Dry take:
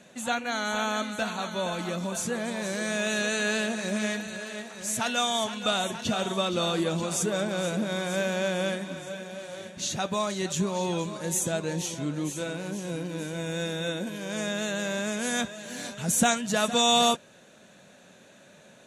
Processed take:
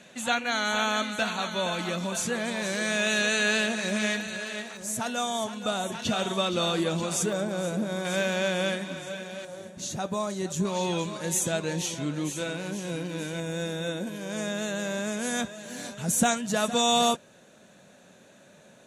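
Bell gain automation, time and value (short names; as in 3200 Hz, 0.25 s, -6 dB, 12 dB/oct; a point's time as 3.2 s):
bell 2800 Hz 2.1 oct
+5 dB
from 4.77 s -7 dB
from 5.92 s +1.5 dB
from 7.33 s -6 dB
from 8.05 s +3.5 dB
from 9.45 s -8 dB
from 10.65 s +3.5 dB
from 13.4 s -3 dB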